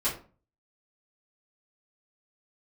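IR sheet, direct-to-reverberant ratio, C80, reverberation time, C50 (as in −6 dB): −12.0 dB, 14.0 dB, 0.40 s, 8.5 dB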